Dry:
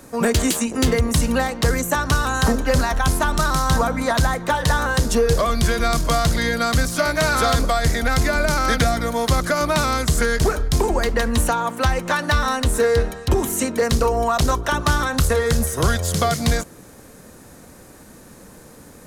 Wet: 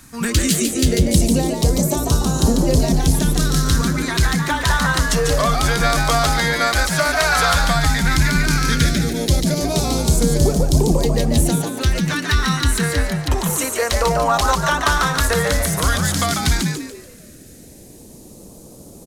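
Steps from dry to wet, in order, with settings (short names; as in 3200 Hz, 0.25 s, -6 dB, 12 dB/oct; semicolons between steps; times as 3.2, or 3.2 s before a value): phaser stages 2, 0.12 Hz, lowest notch 150–1600 Hz; frequency-shifting echo 0.144 s, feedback 36%, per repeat +110 Hz, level -4.5 dB; gain +2 dB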